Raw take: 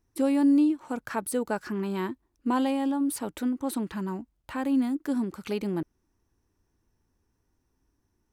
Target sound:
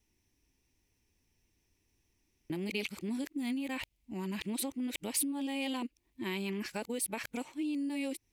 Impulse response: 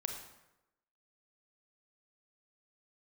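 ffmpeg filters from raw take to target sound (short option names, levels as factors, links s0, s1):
-af "areverse,acompressor=threshold=0.0355:ratio=12,highshelf=f=1800:t=q:w=3:g=8,volume=0.668"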